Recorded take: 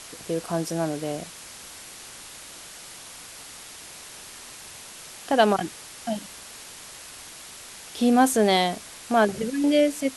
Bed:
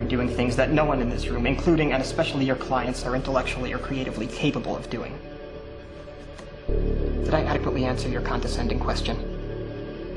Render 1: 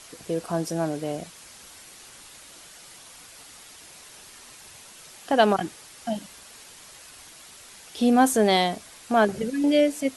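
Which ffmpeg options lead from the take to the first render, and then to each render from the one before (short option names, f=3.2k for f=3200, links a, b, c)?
-af "afftdn=nr=6:nf=-43"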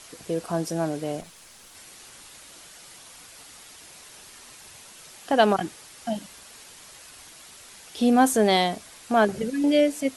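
-filter_complex "[0:a]asettb=1/sr,asplit=3[a][b][c];[a]atrim=end=1.214[d];[b]atrim=start=1.21:end=1.75,asetpts=PTS-STARTPTS,afade=t=in:d=0.004:c=qsin,afade=t=out:st=0.536:d=0.004:c=qsin,aeval=exprs='(tanh(100*val(0)+0.55)-tanh(0.55))/100':c=same[e];[c]atrim=start=1.746[f];[d][e]acrossfade=d=0.004:c1=hsin:c2=qsin[g];[g][f]acrossfade=d=0.004:c1=qsin:c2=hsin"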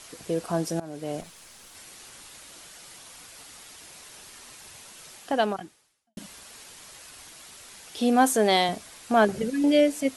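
-filter_complex "[0:a]asettb=1/sr,asplit=3[a][b][c];[a]atrim=end=7.984[d];[b]atrim=start=7.98:end=8.69,asetpts=PTS-STARTPTS,afade=t=in:d=0.004:c=qsin,afade=t=out:st=0.706:d=0.004:c=qsin,highpass=f=260:p=1[e];[c]atrim=start=8.686[f];[d][e]acrossfade=d=0.004:c1=hsin:c2=qsin[g];[g][f]acrossfade=d=0.004:c1=qsin:c2=hsin,asplit=3[h][i][j];[h]atrim=end=0.8,asetpts=PTS-STARTPTS,afade=t=out:st=0.796:d=0.004:c=hsin:silence=0.0944061[k];[i]atrim=start=0.8:end=6.17,asetpts=PTS-STARTPTS,afade=t=in:d=0.4:silence=0.0944061,afade=t=out:st=4.33:d=1.04:c=qua[l];[j]atrim=start=6.17,asetpts=PTS-STARTPTS,afade=t=in:d=0.004:c=hsin[m];[k][l][m]concat=n=3:v=0:a=1"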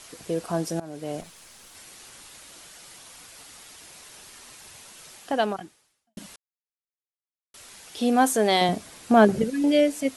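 -filter_complex "[0:a]asettb=1/sr,asplit=3[a][b][c];[a]atrim=end=8.614[d];[b]atrim=start=8.61:end=9.44,asetpts=PTS-STARTPTS,afade=t=in:d=0.004:c=qsin,afade=t=out:st=0.826:d=0.004:c=qsin,equalizer=f=190:w=0.38:g=7.5[e];[c]atrim=start=9.436[f];[d][e]acrossfade=d=0.004:c1=hsin:c2=qsin[g];[g][f]acrossfade=d=0.004:c1=qsin:c2=hsin,asplit=3[h][i][j];[h]atrim=end=6.36,asetpts=PTS-STARTPTS,afade=t=out:st=6.356:d=0.004:c=hsin[k];[i]atrim=start=6.36:end=7.54,asetpts=PTS-STARTPTS,volume=0[l];[j]atrim=start=7.54,asetpts=PTS-STARTPTS,afade=t=in:d=0.004:c=hsin[m];[k][l][m]concat=n=3:v=0:a=1"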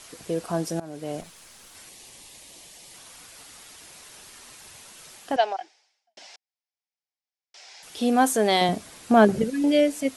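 -filter_complex "[0:a]asettb=1/sr,asplit=3[a][b][c];[a]atrim=end=1.894[d];[b]atrim=start=1.89:end=2.94,asetpts=PTS-STARTPTS,afade=t=in:d=0.004:c=qsin,afade=t=out:st=1.046:d=0.004:c=qsin,equalizer=f=1.4k:w=3.3:g=-14.5[e];[c]atrim=start=2.936[f];[d][e]acrossfade=d=0.004:c1=hsin:c2=qsin[g];[g][f]acrossfade=d=0.004:c1=qsin:c2=hsin,asettb=1/sr,asplit=3[h][i][j];[h]atrim=end=5.364[k];[i]atrim=start=5.36:end=7.83,asetpts=PTS-STARTPTS,afade=t=in:d=0.004:c=qsin,afade=t=out:st=2.466:d=0.004:c=qsin,highpass=f=470:w=0.5412,highpass=f=470:w=1.3066,equalizer=f=510:t=q:w=4:g=-4,equalizer=f=760:t=q:w=4:g=8,equalizer=f=1.2k:t=q:w=4:g=-9,equalizer=f=2.2k:t=q:w=4:g=4,equalizer=f=5.2k:t=q:w=4:g=7,lowpass=f=6.4k:w=0.5412,lowpass=f=6.4k:w=1.3066[l];[j]atrim=start=7.826[m];[k][l]acrossfade=d=0.004:c1=hsin:c2=qsin[n];[n][m]acrossfade=d=0.004:c1=qsin:c2=hsin"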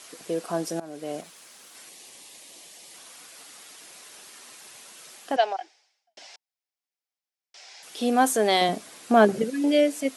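-af "highpass=230,bandreject=f=900:w=26"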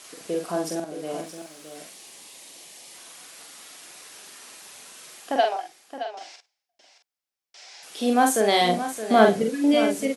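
-filter_complex "[0:a]asplit=2[a][b];[b]adelay=45,volume=-4dB[c];[a][c]amix=inputs=2:normalize=0,asplit=2[d][e];[e]aecho=0:1:56|620:0.119|0.282[f];[d][f]amix=inputs=2:normalize=0"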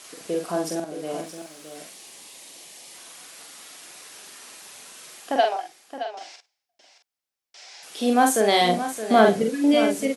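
-af "volume=1dB,alimiter=limit=-3dB:level=0:latency=1"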